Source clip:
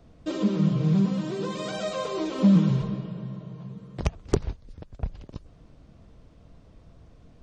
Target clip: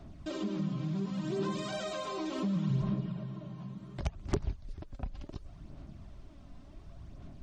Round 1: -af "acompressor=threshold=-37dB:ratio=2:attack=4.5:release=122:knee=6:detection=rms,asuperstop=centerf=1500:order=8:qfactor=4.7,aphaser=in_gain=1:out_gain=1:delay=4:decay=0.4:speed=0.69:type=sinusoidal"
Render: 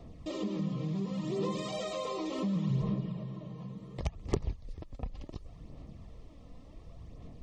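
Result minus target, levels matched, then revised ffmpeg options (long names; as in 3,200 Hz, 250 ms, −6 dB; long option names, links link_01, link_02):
2,000 Hz band −3.0 dB
-af "acompressor=threshold=-37dB:ratio=2:attack=4.5:release=122:knee=6:detection=rms,asuperstop=centerf=480:order=8:qfactor=4.7,aphaser=in_gain=1:out_gain=1:delay=4:decay=0.4:speed=0.69:type=sinusoidal"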